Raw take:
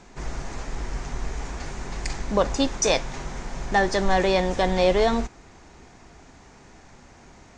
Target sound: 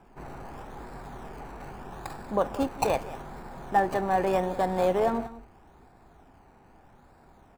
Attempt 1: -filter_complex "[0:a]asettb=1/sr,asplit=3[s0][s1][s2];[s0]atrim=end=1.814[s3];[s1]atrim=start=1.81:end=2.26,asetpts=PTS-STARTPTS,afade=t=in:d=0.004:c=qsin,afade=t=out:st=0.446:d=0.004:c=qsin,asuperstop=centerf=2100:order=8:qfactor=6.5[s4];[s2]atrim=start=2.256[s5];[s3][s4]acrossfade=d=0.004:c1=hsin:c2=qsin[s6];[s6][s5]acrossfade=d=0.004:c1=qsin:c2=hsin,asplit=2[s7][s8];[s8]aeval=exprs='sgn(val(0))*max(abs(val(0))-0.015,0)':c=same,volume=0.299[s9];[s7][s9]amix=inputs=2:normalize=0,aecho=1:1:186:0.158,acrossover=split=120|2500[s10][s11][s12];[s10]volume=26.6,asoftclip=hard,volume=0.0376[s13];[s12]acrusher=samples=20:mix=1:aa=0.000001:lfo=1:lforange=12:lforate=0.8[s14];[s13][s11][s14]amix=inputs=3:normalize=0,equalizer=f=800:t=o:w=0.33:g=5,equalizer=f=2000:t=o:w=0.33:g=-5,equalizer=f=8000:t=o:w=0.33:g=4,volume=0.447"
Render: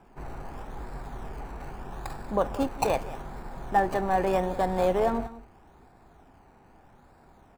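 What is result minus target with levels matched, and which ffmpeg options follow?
overload inside the chain: distortion -4 dB
-filter_complex "[0:a]asettb=1/sr,asplit=3[s0][s1][s2];[s0]atrim=end=1.814[s3];[s1]atrim=start=1.81:end=2.26,asetpts=PTS-STARTPTS,afade=t=in:d=0.004:c=qsin,afade=t=out:st=0.446:d=0.004:c=qsin,asuperstop=centerf=2100:order=8:qfactor=6.5[s4];[s2]atrim=start=2.256[s5];[s3][s4]acrossfade=d=0.004:c1=hsin:c2=qsin[s6];[s6][s5]acrossfade=d=0.004:c1=qsin:c2=hsin,asplit=2[s7][s8];[s8]aeval=exprs='sgn(val(0))*max(abs(val(0))-0.015,0)':c=same,volume=0.299[s9];[s7][s9]amix=inputs=2:normalize=0,aecho=1:1:186:0.158,acrossover=split=120|2500[s10][s11][s12];[s10]volume=79.4,asoftclip=hard,volume=0.0126[s13];[s12]acrusher=samples=20:mix=1:aa=0.000001:lfo=1:lforange=12:lforate=0.8[s14];[s13][s11][s14]amix=inputs=3:normalize=0,equalizer=f=800:t=o:w=0.33:g=5,equalizer=f=2000:t=o:w=0.33:g=-5,equalizer=f=8000:t=o:w=0.33:g=4,volume=0.447"

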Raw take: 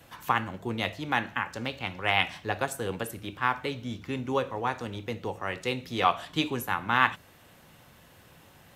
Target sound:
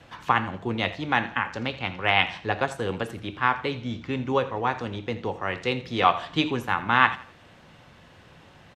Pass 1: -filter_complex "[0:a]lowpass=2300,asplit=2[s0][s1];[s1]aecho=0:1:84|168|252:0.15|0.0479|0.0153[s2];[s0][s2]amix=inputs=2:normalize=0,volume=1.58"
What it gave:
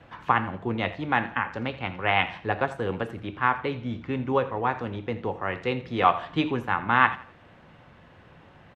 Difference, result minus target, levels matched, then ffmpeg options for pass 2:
4 kHz band -5.0 dB
-filter_complex "[0:a]lowpass=4800,asplit=2[s0][s1];[s1]aecho=0:1:84|168|252:0.15|0.0479|0.0153[s2];[s0][s2]amix=inputs=2:normalize=0,volume=1.58"

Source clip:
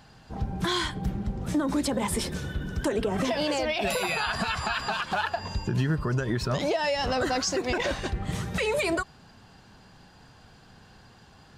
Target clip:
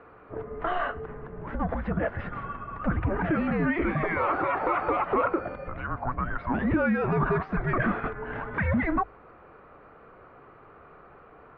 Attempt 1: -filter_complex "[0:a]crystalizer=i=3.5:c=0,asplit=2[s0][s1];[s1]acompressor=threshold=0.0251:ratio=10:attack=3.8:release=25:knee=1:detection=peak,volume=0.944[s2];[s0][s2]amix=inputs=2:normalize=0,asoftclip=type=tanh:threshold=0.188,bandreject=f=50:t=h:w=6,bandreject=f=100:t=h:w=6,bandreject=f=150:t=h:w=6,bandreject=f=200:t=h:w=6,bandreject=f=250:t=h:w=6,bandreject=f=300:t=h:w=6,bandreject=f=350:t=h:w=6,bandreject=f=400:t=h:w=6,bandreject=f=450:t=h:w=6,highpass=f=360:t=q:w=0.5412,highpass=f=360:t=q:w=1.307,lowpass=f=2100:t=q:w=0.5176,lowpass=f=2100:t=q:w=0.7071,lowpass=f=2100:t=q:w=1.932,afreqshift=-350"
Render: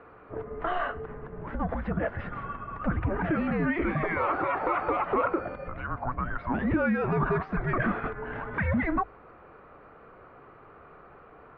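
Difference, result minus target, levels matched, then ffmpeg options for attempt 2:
compression: peak gain reduction +5.5 dB
-filter_complex "[0:a]crystalizer=i=3.5:c=0,asplit=2[s0][s1];[s1]acompressor=threshold=0.0501:ratio=10:attack=3.8:release=25:knee=1:detection=peak,volume=0.944[s2];[s0][s2]amix=inputs=2:normalize=0,asoftclip=type=tanh:threshold=0.188,bandreject=f=50:t=h:w=6,bandreject=f=100:t=h:w=6,bandreject=f=150:t=h:w=6,bandreject=f=200:t=h:w=6,bandreject=f=250:t=h:w=6,bandreject=f=300:t=h:w=6,bandreject=f=350:t=h:w=6,bandreject=f=400:t=h:w=6,bandreject=f=450:t=h:w=6,highpass=f=360:t=q:w=0.5412,highpass=f=360:t=q:w=1.307,lowpass=f=2100:t=q:w=0.5176,lowpass=f=2100:t=q:w=0.7071,lowpass=f=2100:t=q:w=1.932,afreqshift=-350"

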